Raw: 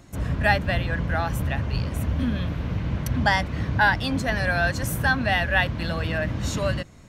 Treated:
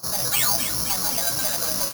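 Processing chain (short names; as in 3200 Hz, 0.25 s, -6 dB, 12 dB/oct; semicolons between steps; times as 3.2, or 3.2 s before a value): resonant high shelf 1600 Hz -6.5 dB, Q 3; overdrive pedal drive 30 dB, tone 2300 Hz, clips at -5 dBFS; painted sound fall, 1.16–1.98, 650–3900 Hz -12 dBFS; granular stretch 0.52×, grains 93 ms; resonator 62 Hz, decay 0.32 s, harmonics all, mix 90%; flange 0.8 Hz, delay 8 ms, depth 6.8 ms, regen -63%; tempo 1.9×; thin delay 0.263 s, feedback 67%, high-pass 2100 Hz, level -5 dB; on a send at -10.5 dB: reverb RT60 3.1 s, pre-delay 6 ms; on the sum: careless resampling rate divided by 8×, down none, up zero stuff; gain -6.5 dB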